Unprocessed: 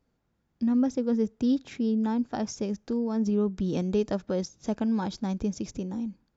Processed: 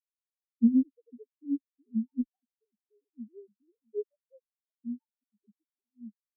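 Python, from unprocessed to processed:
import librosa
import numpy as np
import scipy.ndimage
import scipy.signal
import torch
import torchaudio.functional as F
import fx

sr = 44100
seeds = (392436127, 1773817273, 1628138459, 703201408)

y = fx.sine_speech(x, sr)
y = fx.cheby_harmonics(y, sr, harmonics=(4, 5, 6), levels_db=(-8, -22, -15), full_scale_db=-11.0)
y = fx.spectral_expand(y, sr, expansion=4.0)
y = y * librosa.db_to_amplitude(-4.5)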